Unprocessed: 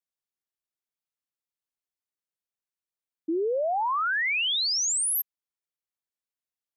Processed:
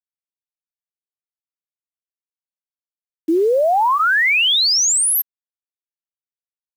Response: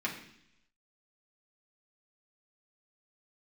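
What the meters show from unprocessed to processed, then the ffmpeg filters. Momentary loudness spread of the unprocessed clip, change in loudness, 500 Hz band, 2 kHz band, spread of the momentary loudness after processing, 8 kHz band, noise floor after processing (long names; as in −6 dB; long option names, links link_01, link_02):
9 LU, +10.5 dB, +11.0 dB, +11.0 dB, 8 LU, +10.0 dB, below −85 dBFS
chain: -af "bandreject=frequency=1200:width=26,dynaudnorm=framelen=300:gausssize=11:maxgain=12.5dB,acrusher=bits=6:mix=0:aa=0.000001,volume=-1.5dB"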